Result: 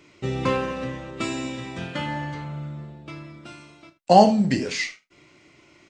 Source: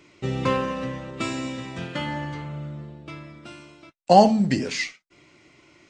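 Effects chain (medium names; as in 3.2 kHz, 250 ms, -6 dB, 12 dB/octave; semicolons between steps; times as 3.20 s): early reflections 33 ms -10.5 dB, 79 ms -17.5 dB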